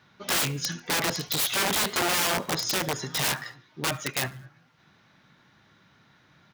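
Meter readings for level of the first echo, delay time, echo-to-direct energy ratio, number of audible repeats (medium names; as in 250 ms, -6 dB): -23.5 dB, 73 ms, -22.5 dB, 2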